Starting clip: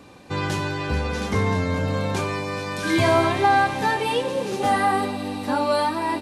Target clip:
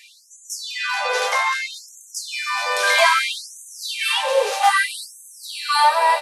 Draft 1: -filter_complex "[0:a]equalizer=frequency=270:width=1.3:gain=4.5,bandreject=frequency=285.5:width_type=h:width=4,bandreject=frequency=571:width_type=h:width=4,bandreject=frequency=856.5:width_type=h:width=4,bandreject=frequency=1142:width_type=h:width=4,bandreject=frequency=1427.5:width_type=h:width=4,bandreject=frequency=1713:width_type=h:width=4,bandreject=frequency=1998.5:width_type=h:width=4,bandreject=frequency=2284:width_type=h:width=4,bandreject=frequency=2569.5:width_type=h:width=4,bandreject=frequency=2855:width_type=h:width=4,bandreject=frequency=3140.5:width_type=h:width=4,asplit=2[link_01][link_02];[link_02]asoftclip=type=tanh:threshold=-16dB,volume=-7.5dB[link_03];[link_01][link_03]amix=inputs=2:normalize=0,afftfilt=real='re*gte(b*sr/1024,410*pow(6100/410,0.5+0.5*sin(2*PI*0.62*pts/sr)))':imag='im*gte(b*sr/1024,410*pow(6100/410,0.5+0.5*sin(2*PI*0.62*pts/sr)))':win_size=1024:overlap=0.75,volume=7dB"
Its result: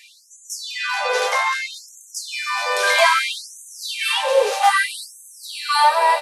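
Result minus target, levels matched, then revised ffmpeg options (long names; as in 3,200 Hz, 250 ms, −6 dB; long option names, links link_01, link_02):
250 Hz band +4.0 dB
-filter_complex "[0:a]equalizer=frequency=270:width=1.3:gain=-6.5,bandreject=frequency=285.5:width_type=h:width=4,bandreject=frequency=571:width_type=h:width=4,bandreject=frequency=856.5:width_type=h:width=4,bandreject=frequency=1142:width_type=h:width=4,bandreject=frequency=1427.5:width_type=h:width=4,bandreject=frequency=1713:width_type=h:width=4,bandreject=frequency=1998.5:width_type=h:width=4,bandreject=frequency=2284:width_type=h:width=4,bandreject=frequency=2569.5:width_type=h:width=4,bandreject=frequency=2855:width_type=h:width=4,bandreject=frequency=3140.5:width_type=h:width=4,asplit=2[link_01][link_02];[link_02]asoftclip=type=tanh:threshold=-16dB,volume=-7.5dB[link_03];[link_01][link_03]amix=inputs=2:normalize=0,afftfilt=real='re*gte(b*sr/1024,410*pow(6100/410,0.5+0.5*sin(2*PI*0.62*pts/sr)))':imag='im*gte(b*sr/1024,410*pow(6100/410,0.5+0.5*sin(2*PI*0.62*pts/sr)))':win_size=1024:overlap=0.75,volume=7dB"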